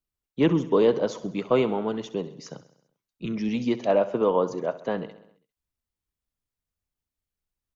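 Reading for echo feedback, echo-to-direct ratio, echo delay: 60%, -14.0 dB, 66 ms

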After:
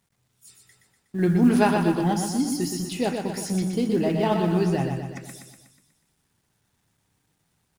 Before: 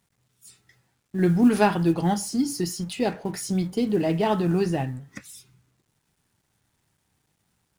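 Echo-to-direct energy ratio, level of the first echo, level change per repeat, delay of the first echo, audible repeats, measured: -4.0 dB, -5.5 dB, -5.0 dB, 0.122 s, 6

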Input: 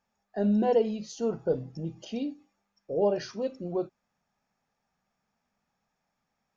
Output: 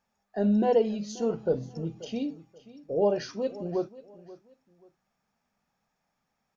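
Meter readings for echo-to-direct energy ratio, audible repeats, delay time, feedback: -18.0 dB, 2, 0.533 s, 29%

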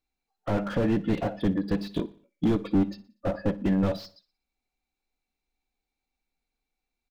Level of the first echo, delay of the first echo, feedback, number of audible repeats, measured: -19.5 dB, 60 ms, 47%, 3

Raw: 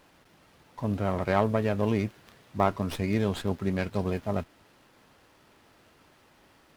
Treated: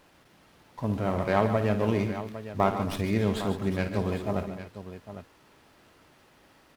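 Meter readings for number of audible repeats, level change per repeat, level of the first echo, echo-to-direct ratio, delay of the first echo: 4, no steady repeat, -11.0 dB, -6.0 dB, 56 ms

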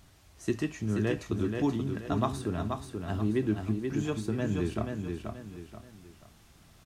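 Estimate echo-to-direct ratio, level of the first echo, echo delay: -4.5 dB, -5.0 dB, 0.481 s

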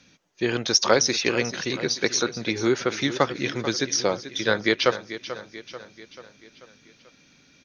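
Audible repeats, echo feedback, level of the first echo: 4, 53%, -13.0 dB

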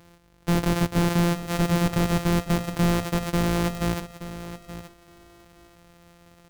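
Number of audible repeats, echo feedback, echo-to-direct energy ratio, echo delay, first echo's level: 2, 16%, -13.0 dB, 0.875 s, -13.0 dB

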